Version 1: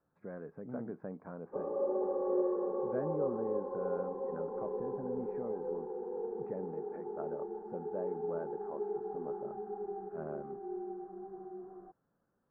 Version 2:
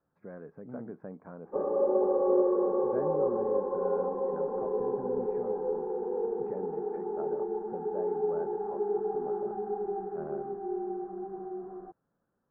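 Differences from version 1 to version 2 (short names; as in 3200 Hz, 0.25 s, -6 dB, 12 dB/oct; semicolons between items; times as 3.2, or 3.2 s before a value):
background +5.5 dB; reverb: on, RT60 1.3 s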